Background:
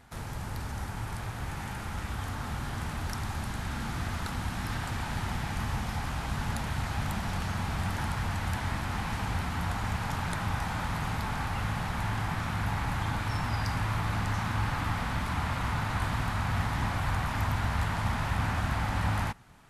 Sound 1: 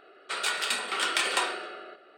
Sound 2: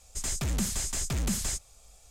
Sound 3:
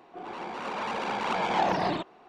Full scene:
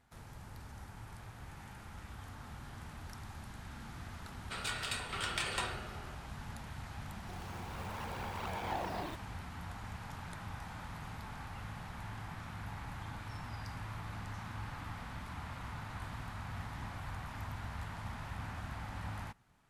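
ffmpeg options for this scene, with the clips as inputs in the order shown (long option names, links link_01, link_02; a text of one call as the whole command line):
ffmpeg -i bed.wav -i cue0.wav -i cue1.wav -i cue2.wav -filter_complex "[0:a]volume=-13.5dB[link_01];[3:a]acrusher=bits=8:dc=4:mix=0:aa=0.000001[link_02];[1:a]atrim=end=2.17,asetpts=PTS-STARTPTS,volume=-10dB,afade=type=in:duration=0.004:curve=hsin,afade=type=out:start_time=2.166:duration=0.004:curve=hsin,adelay=185661S[link_03];[link_02]atrim=end=2.28,asetpts=PTS-STARTPTS,volume=-13dB,afade=type=in:duration=0.004:curve=hsin,afade=type=out:start_time=2.276:duration=0.004:curve=hsin,adelay=7130[link_04];[link_01][link_03][link_04]amix=inputs=3:normalize=0" out.wav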